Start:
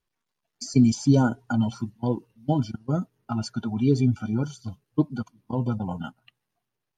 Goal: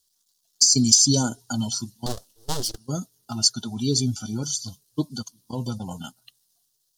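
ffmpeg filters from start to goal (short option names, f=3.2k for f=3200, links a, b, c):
-filter_complex "[0:a]highshelf=f=6.1k:g=-7,asettb=1/sr,asplit=3[a][b][c];[a]atrim=end=2.064[d];[b]atrim=start=2.06:end=2.78,asetpts=PTS-STARTPTS,afade=t=in:d=0.004:c=qsin,afade=t=out:st=0.716:d=0.004:c=qsin,aeval=exprs='abs(val(0))':c=same[e];[c]atrim=start=2.776[f];[d][e]acrossfade=d=0.004:c1=hsin:c2=qsin[g];[g][f]acrossfade=d=0.004:c1=qsin:c2=hsin,aexciter=amount=13.9:drive=8.5:freq=3.7k,volume=-3.5dB"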